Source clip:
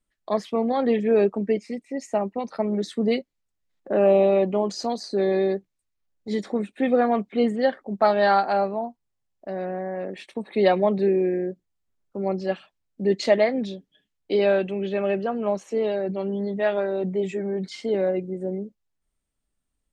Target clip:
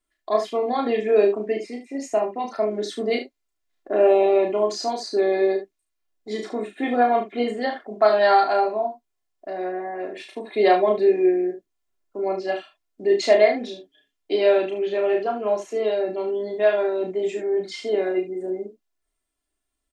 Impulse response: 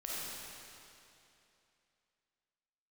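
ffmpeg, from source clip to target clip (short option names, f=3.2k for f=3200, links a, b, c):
-af "bass=f=250:g=-10,treble=f=4k:g=0,aecho=1:1:2.9:0.62,aecho=1:1:33|73:0.631|0.335"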